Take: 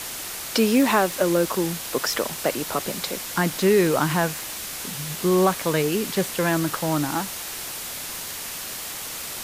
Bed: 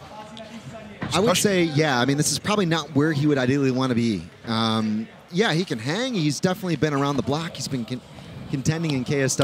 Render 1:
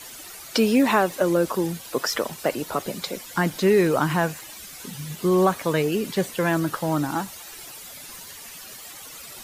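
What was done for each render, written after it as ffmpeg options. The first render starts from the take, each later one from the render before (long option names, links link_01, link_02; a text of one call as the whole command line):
ffmpeg -i in.wav -af "afftdn=noise_reduction=12:noise_floor=-34" out.wav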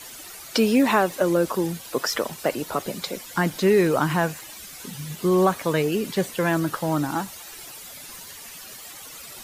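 ffmpeg -i in.wav -af anull out.wav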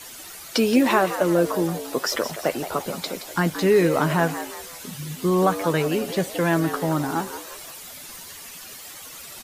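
ffmpeg -i in.wav -filter_complex "[0:a]asplit=2[link_01][link_02];[link_02]adelay=12,volume=-11.5dB[link_03];[link_01][link_03]amix=inputs=2:normalize=0,asplit=5[link_04][link_05][link_06][link_07][link_08];[link_05]adelay=173,afreqshift=110,volume=-11.5dB[link_09];[link_06]adelay=346,afreqshift=220,volume=-19dB[link_10];[link_07]adelay=519,afreqshift=330,volume=-26.6dB[link_11];[link_08]adelay=692,afreqshift=440,volume=-34.1dB[link_12];[link_04][link_09][link_10][link_11][link_12]amix=inputs=5:normalize=0" out.wav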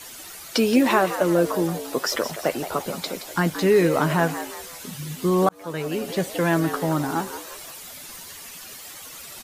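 ffmpeg -i in.wav -filter_complex "[0:a]asplit=2[link_01][link_02];[link_01]atrim=end=5.49,asetpts=PTS-STARTPTS,afade=type=out:start_time=5.486:duration=0.004:curve=hsin[link_03];[link_02]atrim=start=5.49,asetpts=PTS-STARTPTS,afade=type=in:duration=0.97:curve=qsin[link_04];[link_03][link_04]concat=n=2:v=0:a=1" out.wav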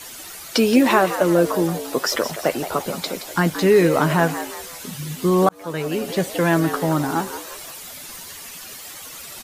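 ffmpeg -i in.wav -af "volume=3dB" out.wav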